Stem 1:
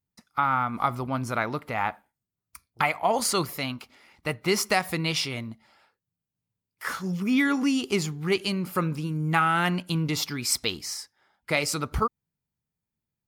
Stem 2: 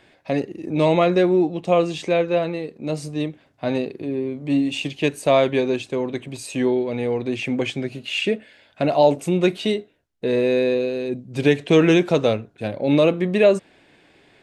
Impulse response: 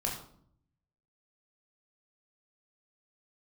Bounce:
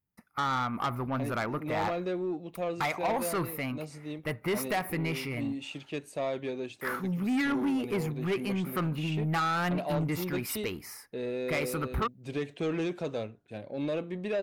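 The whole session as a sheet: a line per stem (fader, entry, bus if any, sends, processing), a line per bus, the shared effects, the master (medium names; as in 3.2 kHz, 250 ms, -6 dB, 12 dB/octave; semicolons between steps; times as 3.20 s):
-0.5 dB, 0.00 s, no send, high-order bell 5.1 kHz -15 dB
-14.0 dB, 0.90 s, no send, none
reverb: none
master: saturation -24.5 dBFS, distortion -10 dB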